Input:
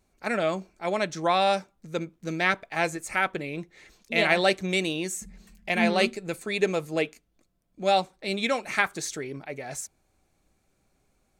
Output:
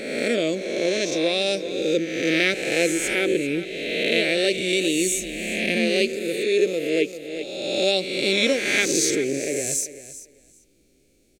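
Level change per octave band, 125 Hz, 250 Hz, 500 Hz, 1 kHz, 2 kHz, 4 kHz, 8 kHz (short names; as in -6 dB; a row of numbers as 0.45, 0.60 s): +0.5, +6.5, +6.0, -10.5, +3.5, +8.0, +12.0 dB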